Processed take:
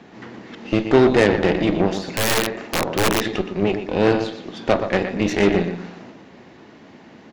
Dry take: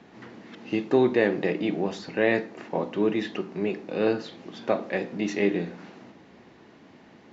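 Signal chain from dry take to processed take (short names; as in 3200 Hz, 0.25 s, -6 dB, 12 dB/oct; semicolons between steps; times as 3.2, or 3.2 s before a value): feedback echo 0.12 s, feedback 30%, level -9 dB; added harmonics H 8 -19 dB, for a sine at -8.5 dBFS; 2.07–3.25 wrapped overs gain 17 dB; gain +6.5 dB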